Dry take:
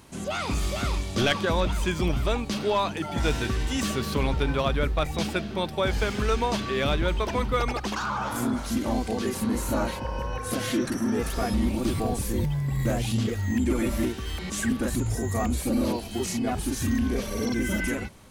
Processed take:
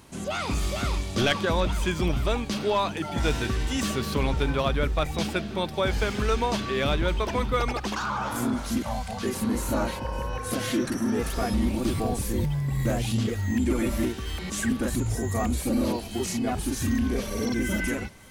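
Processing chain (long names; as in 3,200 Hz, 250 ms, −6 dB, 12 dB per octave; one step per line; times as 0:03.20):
0:08.82–0:09.23: Chebyshev band-stop filter 170–680 Hz, order 2
delay with a high-pass on its return 555 ms, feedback 60%, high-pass 1,800 Hz, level −20 dB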